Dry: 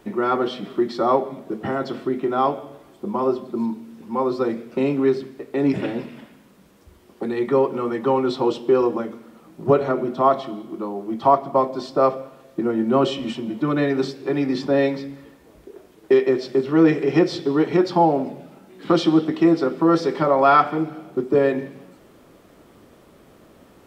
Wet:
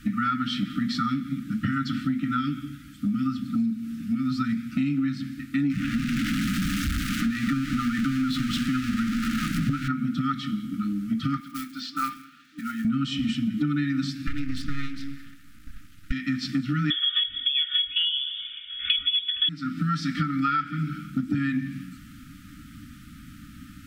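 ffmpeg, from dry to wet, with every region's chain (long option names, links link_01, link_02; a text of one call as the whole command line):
ffmpeg -i in.wav -filter_complex "[0:a]asettb=1/sr,asplit=3[link_01][link_02][link_03];[link_01]atrim=end=5.704[link_04];[link_02]atrim=start=5.7:end=9.88,asetpts=PTS-STARTPTS,afade=type=in:duration=0.004:curve=qsin,afade=type=out:start_time=4.176:duration=0.004:curve=qsin,aeval=exprs='val(0)+0.5*0.0668*sgn(val(0))':channel_layout=same,lowpass=frequency=3500:poles=1,equalizer=frequency=88:width=1.8:gain=-7.5[link_05];[link_03]atrim=start=9.876[link_06];[link_04][link_05]acrossfade=duration=0.004:curve1=hsin:curve2=qsin[link_07];[link_07][link_06]acrossfade=duration=0.004:curve1=qsin:curve2=hsin,asettb=1/sr,asplit=3[link_08][link_09][link_10];[link_08]atrim=end=11.404[link_11];[link_09]atrim=start=11.4:end=12.85,asetpts=PTS-STARTPTS,afade=type=in:duration=0.004:curve=qsin,afade=type=out:start_time=1.446:duration=0.004:curve=qsin,highpass=530,lowpass=4500,equalizer=frequency=1600:width=0.88:gain=-3,acrusher=bits=7:mode=log:mix=0:aa=0.000001[link_12];[link_10]atrim=start=12.846[link_13];[link_11][link_12]acrossfade=duration=0.004:curve1=hsin:curve2=qsin[link_14];[link_14][link_13]acrossfade=duration=0.004:curve1=qsin:curve2=hsin,asettb=1/sr,asplit=3[link_15][link_16][link_17];[link_15]atrim=end=14.274[link_18];[link_16]atrim=start=14.27:end=16.12,asetpts=PTS-STARTPTS,afade=type=in:duration=0.004:curve=qsin,afade=type=out:start_time=1.846:duration=0.004:curve=qsin,highpass=frequency=46:width=0.5412,highpass=frequency=46:width=1.3066,bass=frequency=250:gain=-9,treble=frequency=4000:gain=-1,aeval=exprs='max(val(0),0)':channel_layout=same[link_19];[link_17]atrim=start=16.116[link_20];[link_18][link_19]acrossfade=duration=0.004:curve1=hsin:curve2=qsin[link_21];[link_21][link_20]acrossfade=duration=0.004:curve1=qsin:curve2=hsin,asettb=1/sr,asplit=3[link_22][link_23][link_24];[link_22]atrim=end=16.904[link_25];[link_23]atrim=start=16.9:end=19.49,asetpts=PTS-STARTPTS,afade=type=in:duration=0.004:curve=qsin,afade=type=out:start_time=2.586:duration=0.004:curve=qsin,aecho=1:1:2.7:0.72,atrim=end_sample=114219,asoftclip=type=hard:threshold=-6dB,lowpass=frequency=3100:width_type=q:width=0.5098,lowpass=frequency=3100:width_type=q:width=0.6013,lowpass=frequency=3100:width_type=q:width=0.9,lowpass=frequency=3100:width_type=q:width=2.563,afreqshift=-3700[link_26];[link_24]atrim=start=19.486[link_27];[link_25][link_26]acrossfade=duration=0.004:curve1=hsin:curve2=qsin[link_28];[link_28][link_27]acrossfade=duration=0.004:curve1=qsin:curve2=hsin,afftfilt=real='re*(1-between(b*sr/4096,310,1200))':imag='im*(1-between(b*sr/4096,310,1200))':win_size=4096:overlap=0.75,lowshelf=frequency=150:gain=7.5,acompressor=threshold=-28dB:ratio=12,volume=6dB" out.wav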